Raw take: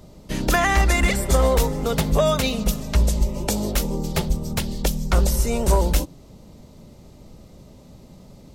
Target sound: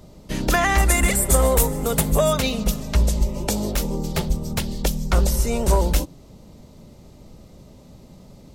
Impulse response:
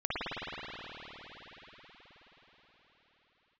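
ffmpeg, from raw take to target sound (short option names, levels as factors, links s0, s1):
-filter_complex "[0:a]asettb=1/sr,asplit=3[s0][s1][s2];[s0]atrim=end=0.784[s3];[s1]atrim=start=0.78:end=2.33,asetpts=PTS-STARTPTS,afade=t=in:d=0.004:c=qsin,afade=t=out:st=1.546:d=0.004:c=qsin,highshelf=f=6800:t=q:w=1.5:g=9[s4];[s2]atrim=start=2.326[s5];[s3][s4]acrossfade=d=0.004:c1=hsin:c2=qsin[s6];[s6][s5]acrossfade=d=0.004:c1=qsin:c2=hsin,asettb=1/sr,asplit=3[s7][s8][s9];[s7]atrim=end=3.684[s10];[s8]atrim=start=3.68:end=4.25,asetpts=PTS-STARTPTS,afade=t=in:d=0.004:c=qsin,afade=t=out:st=0.566:d=0.004:c=qsin,asoftclip=type=hard:threshold=0.168[s11];[s9]atrim=start=4.246[s12];[s10][s11]acrossfade=d=0.004:c1=hsin:c2=qsin[s13];[s13][s12]acrossfade=d=0.004:c1=qsin:c2=hsin"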